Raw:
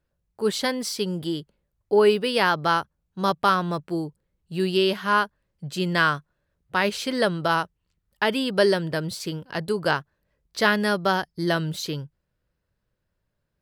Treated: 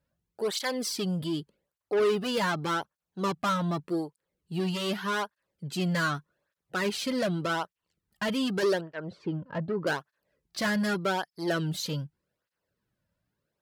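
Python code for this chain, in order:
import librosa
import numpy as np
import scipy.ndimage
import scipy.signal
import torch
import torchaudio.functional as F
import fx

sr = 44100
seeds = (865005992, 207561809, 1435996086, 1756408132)

y = fx.lowpass(x, sr, hz=1300.0, slope=12, at=(8.81, 9.87))
y = 10.0 ** (-22.5 / 20.0) * np.tanh(y / 10.0 ** (-22.5 / 20.0))
y = fx.flanger_cancel(y, sr, hz=0.84, depth_ms=2.8)
y = y * librosa.db_to_amplitude(1.5)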